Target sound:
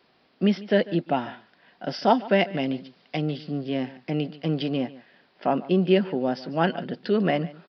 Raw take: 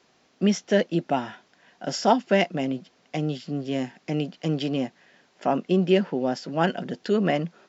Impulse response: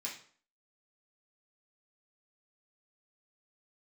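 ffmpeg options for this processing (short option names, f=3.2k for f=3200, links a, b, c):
-filter_complex "[0:a]asettb=1/sr,asplit=3[a][b][c];[a]atrim=end=2.574[d];[b]atrim=start=2.57:end=3.22,asetpts=PTS-STARTPTS,afade=t=in:d=0.004:c=qsin,afade=t=out:st=0.646:d=0.004:c=qsin,highshelf=f=3.1k:g=8.5[e];[c]atrim=start=3.216[f];[d][e]acrossfade=d=0.004:c1=hsin:c2=qsin[g];[g][f]acrossfade=d=0.004:c1=qsin:c2=hsin,asplit=2[h][i];[i]aecho=0:1:146:0.112[j];[h][j]amix=inputs=2:normalize=0,aresample=11025,aresample=44100"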